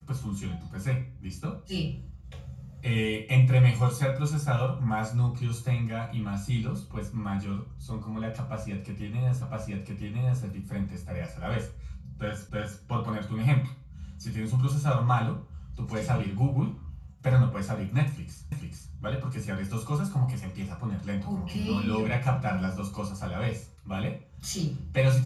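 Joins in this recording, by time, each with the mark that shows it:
9.42 s: repeat of the last 1.01 s
12.49 s: repeat of the last 0.32 s
18.52 s: repeat of the last 0.44 s

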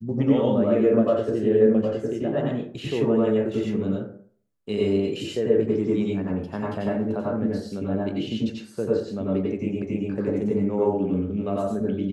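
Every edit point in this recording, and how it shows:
9.82 s: repeat of the last 0.28 s

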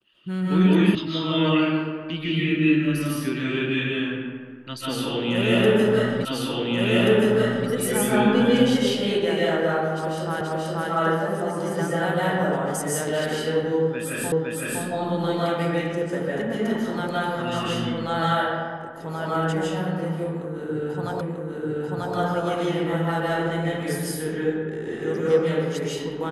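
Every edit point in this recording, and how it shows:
0.95 s: sound stops dead
6.25 s: repeat of the last 1.43 s
10.41 s: repeat of the last 0.48 s
14.32 s: repeat of the last 0.51 s
21.21 s: repeat of the last 0.94 s

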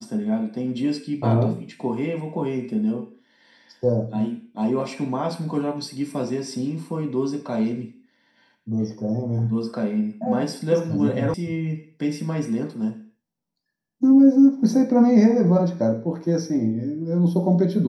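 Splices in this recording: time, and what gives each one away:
11.34 s: sound stops dead

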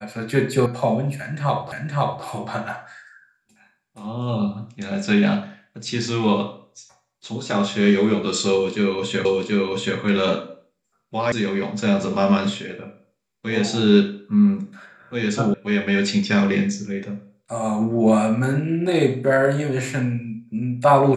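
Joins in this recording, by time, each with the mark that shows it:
0.66 s: sound stops dead
1.72 s: repeat of the last 0.52 s
9.25 s: repeat of the last 0.73 s
11.32 s: sound stops dead
15.54 s: sound stops dead

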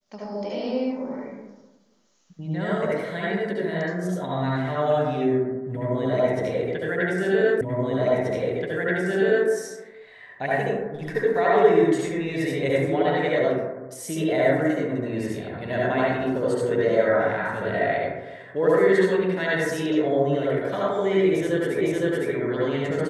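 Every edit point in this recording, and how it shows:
7.61 s: repeat of the last 1.88 s
21.81 s: repeat of the last 0.51 s

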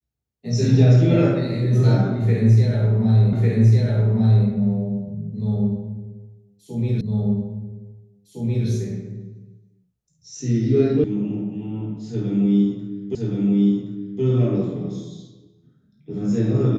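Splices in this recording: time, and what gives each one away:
3.33 s: repeat of the last 1.15 s
7.01 s: repeat of the last 1.66 s
11.04 s: sound stops dead
13.15 s: repeat of the last 1.07 s

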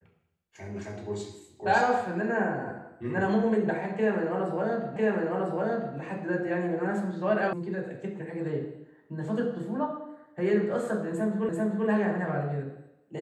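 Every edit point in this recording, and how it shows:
4.96 s: repeat of the last 1 s
7.53 s: sound stops dead
11.49 s: repeat of the last 0.39 s

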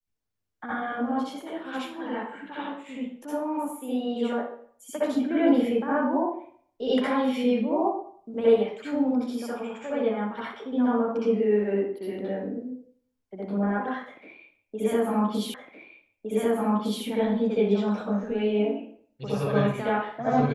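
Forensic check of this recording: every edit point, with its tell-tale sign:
15.54 s: repeat of the last 1.51 s

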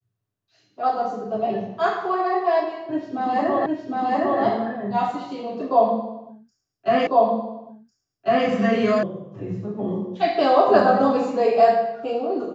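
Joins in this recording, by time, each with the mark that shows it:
3.66 s: repeat of the last 0.76 s
7.07 s: repeat of the last 1.4 s
9.03 s: sound stops dead

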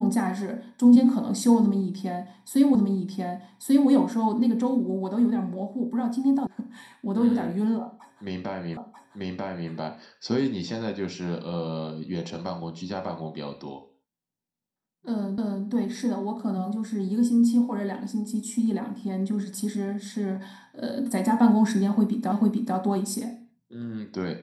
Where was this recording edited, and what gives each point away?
2.75 s: repeat of the last 1.14 s
6.47 s: sound stops dead
8.77 s: repeat of the last 0.94 s
15.38 s: repeat of the last 0.28 s
22.32 s: repeat of the last 0.44 s

